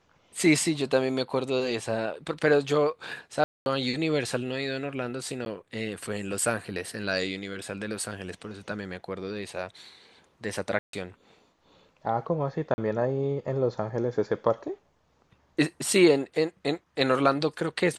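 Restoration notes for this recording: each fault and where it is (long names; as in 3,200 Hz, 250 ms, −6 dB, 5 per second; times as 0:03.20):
0:03.44–0:03.66: drop-out 221 ms
0:05.45–0:05.46: drop-out
0:10.79–0:10.93: drop-out 143 ms
0:12.74–0:12.78: drop-out 40 ms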